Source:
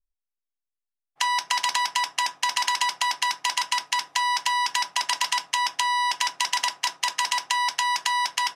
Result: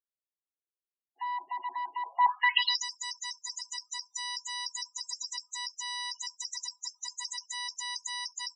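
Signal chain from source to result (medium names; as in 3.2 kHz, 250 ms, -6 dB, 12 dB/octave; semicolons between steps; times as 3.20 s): band-pass sweep 330 Hz -> 7.7 kHz, 1.99–2.87 s; loudest bins only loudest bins 16; three-band isolator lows -13 dB, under 450 Hz, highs -15 dB, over 5.8 kHz; trim +8 dB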